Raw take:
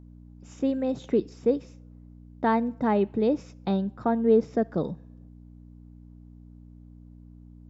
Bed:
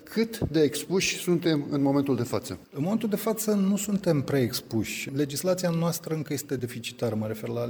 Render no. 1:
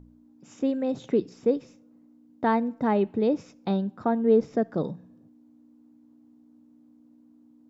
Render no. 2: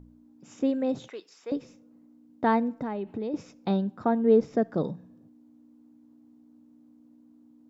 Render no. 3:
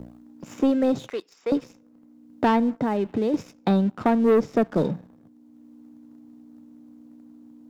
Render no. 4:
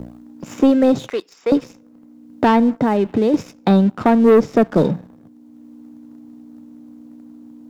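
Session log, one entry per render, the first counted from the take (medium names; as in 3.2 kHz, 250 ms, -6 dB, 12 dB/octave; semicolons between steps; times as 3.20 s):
de-hum 60 Hz, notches 3
1.08–1.52 s: high-pass 1.1 kHz; 2.78–3.34 s: compression, threshold -29 dBFS
waveshaping leveller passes 2; three bands compressed up and down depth 40%
trim +7.5 dB; peak limiter -3 dBFS, peak gain reduction 2.5 dB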